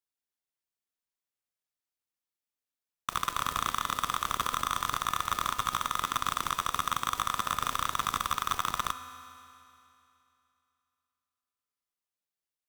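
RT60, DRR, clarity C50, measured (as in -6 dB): 2.8 s, 9.5 dB, 10.5 dB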